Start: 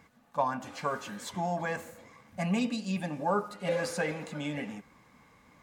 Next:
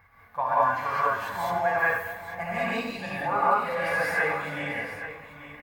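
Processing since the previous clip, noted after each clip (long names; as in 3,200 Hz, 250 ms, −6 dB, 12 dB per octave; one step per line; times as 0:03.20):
drawn EQ curve 100 Hz 0 dB, 200 Hz −20 dB, 380 Hz −15 dB, 830 Hz −4 dB, 1,900 Hz 0 dB, 3,000 Hz −12 dB, 4,500 Hz −14 dB, 7,200 Hz −21 dB, 15,000 Hz −1 dB
multi-tap delay 97/228/454/838 ms −10.5/−17/−17/−12 dB
reverb whose tail is shaped and stops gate 230 ms rising, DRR −8 dB
level +4.5 dB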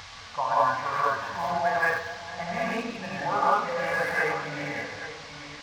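adaptive Wiener filter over 9 samples
upward compression, threshold −38 dBFS
noise in a band 640–5,500 Hz −46 dBFS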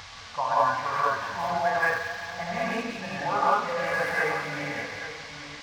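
delay with a high-pass on its return 179 ms, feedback 65%, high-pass 1,900 Hz, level −7 dB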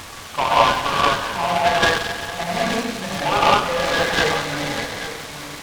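short delay modulated by noise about 1,600 Hz, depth 0.081 ms
level +7.5 dB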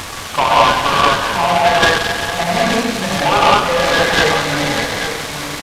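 in parallel at −1.5 dB: downward compressor, threshold −25 dBFS, peak gain reduction 14.5 dB
on the sum: leveller curve on the samples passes 1
downsampling to 32,000 Hz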